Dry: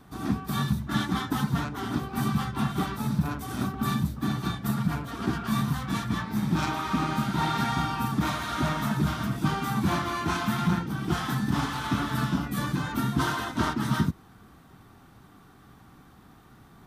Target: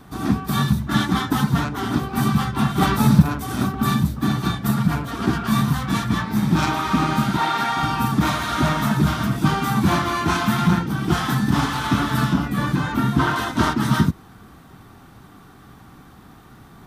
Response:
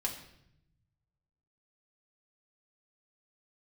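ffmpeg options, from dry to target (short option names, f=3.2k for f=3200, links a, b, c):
-filter_complex "[0:a]asplit=3[a][b][c];[a]afade=t=out:st=2.81:d=0.02[d];[b]acontrast=51,afade=t=in:st=2.81:d=0.02,afade=t=out:st=3.21:d=0.02[e];[c]afade=t=in:st=3.21:d=0.02[f];[d][e][f]amix=inputs=3:normalize=0,asettb=1/sr,asplit=3[g][h][i];[g]atrim=end=7.374[j];[h]atrim=start=7.37:end=7.83,asetpts=PTS-STARTPTS,afade=t=in:d=0.004:c=qsin,afade=t=out:st=0.456:d=0.004:c=qsin,bass=f=250:g=-15,treble=f=4k:g=-4[k];[i]atrim=start=7.826[l];[j][k]acrossfade=d=0.004:c1=hsin:c2=qsin[m];[m][l]acrossfade=d=0.004:c1=qsin:c2=hsin,asettb=1/sr,asplit=3[n][o][p];[n]atrim=end=12.334[q];[o]atrim=start=12.33:end=13.36,asetpts=PTS-STARTPTS,afade=t=in:d=0.004:c=qsin,afade=t=out:st=1.026:d=0.004:c=qsin,acrossover=split=3300[r][s];[s]acompressor=threshold=-48dB:ratio=4:attack=1:release=60[t];[r][t]amix=inputs=2:normalize=0[u];[p]atrim=start=13.356[v];[q][u]acrossfade=d=0.004:c1=hsin:c2=qsin[w];[w][v]acrossfade=d=0.004:c1=qsin:c2=hsin,volume=7.5dB"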